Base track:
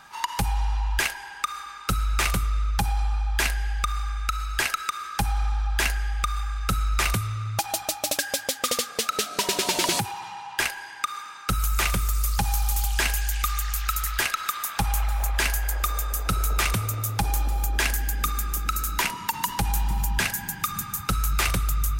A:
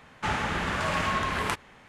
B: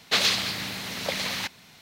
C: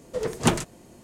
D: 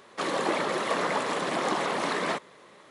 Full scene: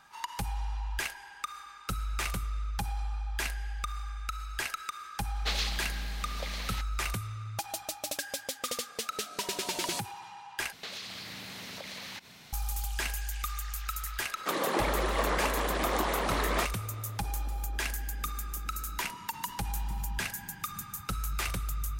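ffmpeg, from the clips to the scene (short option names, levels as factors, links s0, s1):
-filter_complex "[2:a]asplit=2[s0][s1];[0:a]volume=0.335[s2];[s1]acompressor=threshold=0.0112:ratio=6:attack=3.2:release=140:knee=1:detection=peak[s3];[s2]asplit=2[s4][s5];[s4]atrim=end=10.724[s6];[s3]atrim=end=1.81,asetpts=PTS-STARTPTS,volume=0.944[s7];[s5]atrim=start=12.526[s8];[s0]atrim=end=1.81,asetpts=PTS-STARTPTS,volume=0.299,afade=t=in:d=0.004:c=hsin,afade=t=out:st=1.806:d=0.004:c=hsin,adelay=5340[s9];[4:a]atrim=end=2.9,asetpts=PTS-STARTPTS,volume=0.75,afade=t=in:d=0.004:c=hsin,afade=t=out:st=2.896:d=0.004:c=hsin,adelay=629748S[s10];[s6][s7]acrossfade=d=0.004:c1=hsin:c2=hsin[s11];[s11][s8]acrossfade=d=0.004:c1=hsin:c2=hsin[s12];[s12][s9][s10]amix=inputs=3:normalize=0"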